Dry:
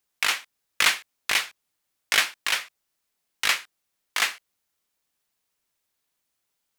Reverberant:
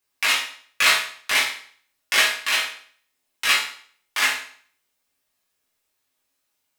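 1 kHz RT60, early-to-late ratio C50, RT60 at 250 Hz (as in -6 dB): 0.50 s, 5.0 dB, 0.55 s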